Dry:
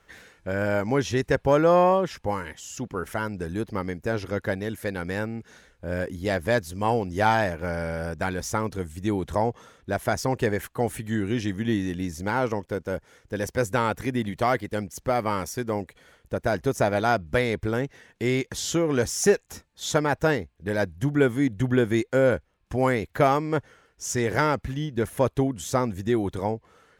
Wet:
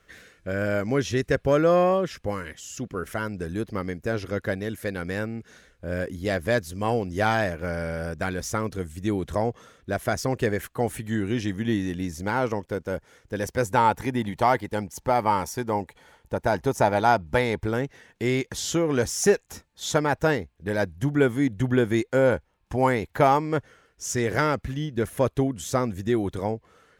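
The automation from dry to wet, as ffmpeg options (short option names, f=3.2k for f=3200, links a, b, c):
-af "asetnsamples=n=441:p=0,asendcmd='3.11 equalizer g -7.5;10.75 equalizer g 0;13.65 equalizer g 12;17.66 equalizer g 1.5;22.18 equalizer g 7.5;23.45 equalizer g -4',equalizer=f=880:t=o:w=0.26:g=-14"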